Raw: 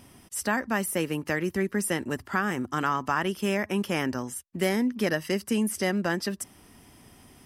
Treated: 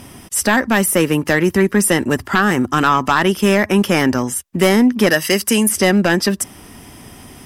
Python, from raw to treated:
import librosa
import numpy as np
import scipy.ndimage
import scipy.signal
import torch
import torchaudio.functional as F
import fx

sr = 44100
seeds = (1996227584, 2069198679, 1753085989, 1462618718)

y = fx.tilt_eq(x, sr, slope=2.0, at=(5.09, 5.69))
y = fx.fold_sine(y, sr, drive_db=5, ceiling_db=-11.0)
y = fx.notch(y, sr, hz=4300.0, q=20.0)
y = F.gain(torch.from_numpy(y), 5.5).numpy()